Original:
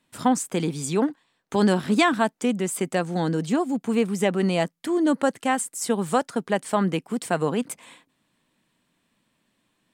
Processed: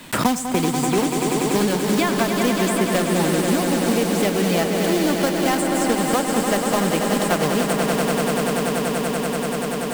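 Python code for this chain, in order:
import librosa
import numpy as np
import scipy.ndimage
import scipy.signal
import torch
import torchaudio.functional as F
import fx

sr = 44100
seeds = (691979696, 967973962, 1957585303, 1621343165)

y = fx.block_float(x, sr, bits=3)
y = fx.rider(y, sr, range_db=10, speed_s=0.5)
y = fx.echo_swell(y, sr, ms=96, loudest=5, wet_db=-8.5)
y = fx.band_squash(y, sr, depth_pct=100)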